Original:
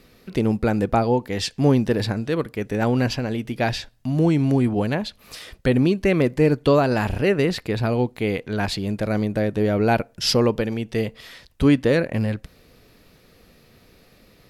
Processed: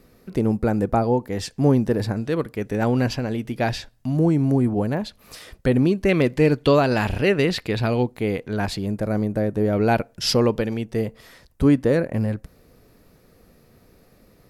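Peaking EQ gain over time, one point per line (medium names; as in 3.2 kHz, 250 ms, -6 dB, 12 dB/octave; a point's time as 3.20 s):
peaking EQ 3.2 kHz 1.6 oct
-9.5 dB
from 2.16 s -3.5 dB
from 4.17 s -12.5 dB
from 4.97 s -5 dB
from 6.09 s +3.5 dB
from 8.03 s -5 dB
from 8.86 s -11.5 dB
from 9.73 s -2 dB
from 10.85 s -10 dB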